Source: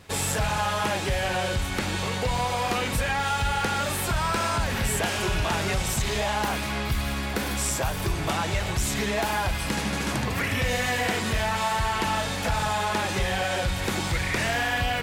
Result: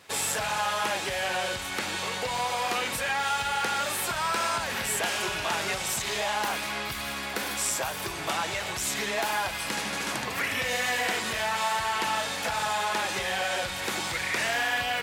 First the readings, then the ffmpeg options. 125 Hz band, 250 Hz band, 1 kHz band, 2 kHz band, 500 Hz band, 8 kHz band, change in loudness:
-15.0 dB, -9.0 dB, -1.5 dB, -0.5 dB, -3.5 dB, 0.0 dB, -2.0 dB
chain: -af "highpass=f=620:p=1"

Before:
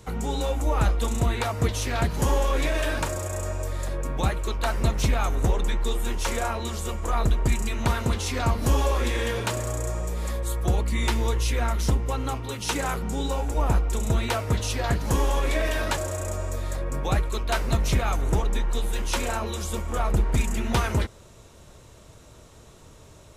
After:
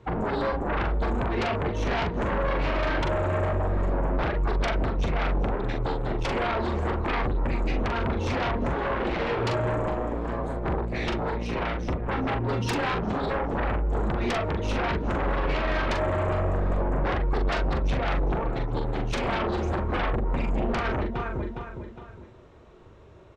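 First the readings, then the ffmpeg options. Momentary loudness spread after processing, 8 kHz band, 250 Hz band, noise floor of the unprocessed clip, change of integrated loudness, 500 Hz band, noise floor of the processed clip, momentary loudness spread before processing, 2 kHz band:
3 LU, -17.0 dB, +1.5 dB, -49 dBFS, -1.0 dB, +2.0 dB, -47 dBFS, 6 LU, +1.0 dB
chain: -filter_complex "[0:a]equalizer=f=370:w=4.5:g=6.5,afftdn=nr=15:nf=-30,lowpass=2200,lowshelf=f=140:g=-6.5,aecho=1:1:410|820|1230:0.15|0.0554|0.0205,acompressor=threshold=0.0316:ratio=16,aeval=exprs='0.1*sin(PI/2*4.47*val(0)/0.1)':c=same,asplit=2[s0][s1];[s1]adelay=42,volume=0.562[s2];[s0][s2]amix=inputs=2:normalize=0,volume=0.631"

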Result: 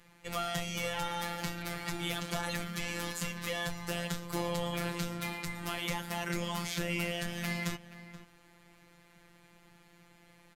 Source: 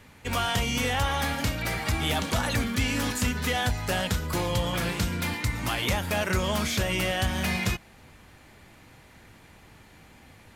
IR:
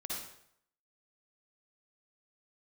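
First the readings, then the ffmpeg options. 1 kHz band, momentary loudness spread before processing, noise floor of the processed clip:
-8.0 dB, 3 LU, -62 dBFS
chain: -filter_complex "[0:a]asplit=2[s0][s1];[s1]adelay=478.1,volume=0.2,highshelf=f=4000:g=-10.8[s2];[s0][s2]amix=inputs=2:normalize=0,afftfilt=real='hypot(re,im)*cos(PI*b)':imag='0':win_size=1024:overlap=0.75,volume=0.596"

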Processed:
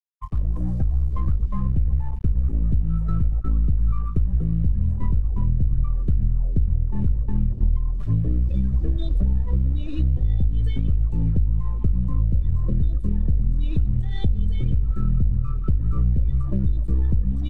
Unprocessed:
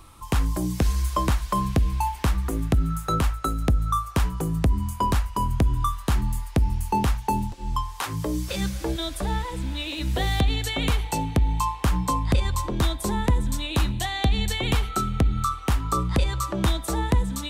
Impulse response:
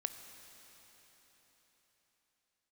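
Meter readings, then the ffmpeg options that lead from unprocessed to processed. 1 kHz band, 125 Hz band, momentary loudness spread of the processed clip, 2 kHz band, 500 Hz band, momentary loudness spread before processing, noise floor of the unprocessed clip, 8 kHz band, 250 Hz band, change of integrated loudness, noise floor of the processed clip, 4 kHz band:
-18.5 dB, +3.5 dB, 2 LU, under -15 dB, -10.5 dB, 4 LU, -38 dBFS, under -30 dB, -2.0 dB, +1.5 dB, -27 dBFS, under -15 dB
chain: -filter_complex "[0:a]aeval=exprs='0.266*(cos(1*acos(clip(val(0)/0.266,-1,1)))-cos(1*PI/2))+0.00531*(cos(3*acos(clip(val(0)/0.266,-1,1)))-cos(3*PI/2))+0.0531*(cos(4*acos(clip(val(0)/0.266,-1,1)))-cos(4*PI/2))+0.00422*(cos(5*acos(clip(val(0)/0.266,-1,1)))-cos(5*PI/2))':c=same,alimiter=limit=0.0794:level=0:latency=1:release=301,asplit=2[s0][s1];[s1]aecho=0:1:116:0.2[s2];[s0][s2]amix=inputs=2:normalize=0,asubboost=boost=11.5:cutoff=220,acrusher=bits=4:mix=0:aa=0.5,afftdn=nr=17:nf=-28,acompressor=threshold=0.112:ratio=6,aecho=1:1:1.7:0.3,adynamicequalizer=threshold=0.00355:dfrequency=370:dqfactor=4.3:tfrequency=370:tqfactor=4.3:attack=5:release=100:ratio=0.375:range=2:mode=cutabove:tftype=bell,lowpass=f=2400:p=1,volume=1.19"

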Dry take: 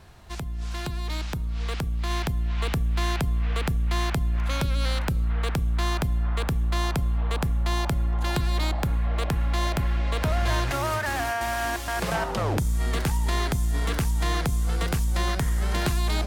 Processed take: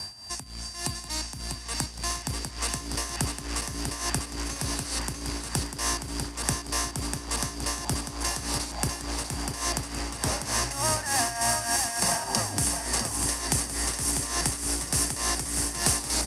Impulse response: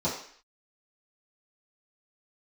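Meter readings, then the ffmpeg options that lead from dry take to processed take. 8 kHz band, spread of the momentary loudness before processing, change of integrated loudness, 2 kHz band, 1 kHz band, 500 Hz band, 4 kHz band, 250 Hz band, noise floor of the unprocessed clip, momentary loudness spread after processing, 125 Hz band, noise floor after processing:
+13.0 dB, 4 LU, -1.5 dB, -2.5 dB, -2.0 dB, -4.5 dB, +3.5 dB, -3.0 dB, -31 dBFS, 8 LU, -9.0 dB, -40 dBFS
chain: -af "aeval=exprs='val(0)+0.00224*sin(2*PI*4700*n/s)':c=same,aecho=1:1:1.1:0.52,areverse,acompressor=mode=upward:threshold=0.0398:ratio=2.5,areverse,aeval=exprs='0.126*(abs(mod(val(0)/0.126+3,4)-2)-1)':c=same,equalizer=f=7100:w=5:g=-10,aexciter=amount=11.6:drive=4.2:freq=5100,tremolo=f=3.4:d=0.73,acrusher=bits=3:mode=log:mix=0:aa=0.000001,highpass=110,equalizer=f=170:t=q:w=4:g=-6,equalizer=f=260:t=q:w=4:g=5,equalizer=f=3800:t=q:w=4:g=-3,lowpass=f=9100:w=0.5412,lowpass=f=9100:w=1.3066,aecho=1:1:646|1292|1938|2584:0.501|0.15|0.0451|0.0135,volume=0.891"

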